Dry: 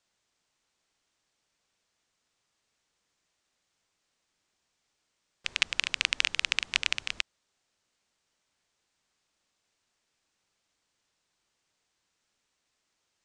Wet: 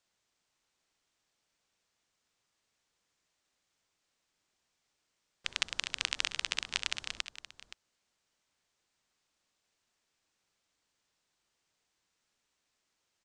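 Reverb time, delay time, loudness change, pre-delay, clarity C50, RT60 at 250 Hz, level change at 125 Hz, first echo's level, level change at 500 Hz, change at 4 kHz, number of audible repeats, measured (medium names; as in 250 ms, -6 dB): no reverb, 64 ms, -6.0 dB, no reverb, no reverb, no reverb, -2.0 dB, -20.0 dB, -2.5 dB, -5.0 dB, 2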